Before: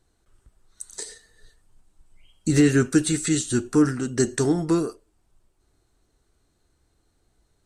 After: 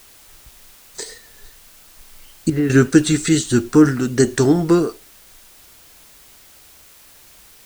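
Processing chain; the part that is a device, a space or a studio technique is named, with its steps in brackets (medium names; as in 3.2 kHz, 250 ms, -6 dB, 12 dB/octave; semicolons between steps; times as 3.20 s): worn cassette (low-pass 6.7 kHz; wow and flutter; level dips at 0.75/1.68/2.50/6.85 s, 194 ms -9 dB; white noise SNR 27 dB); trim +7 dB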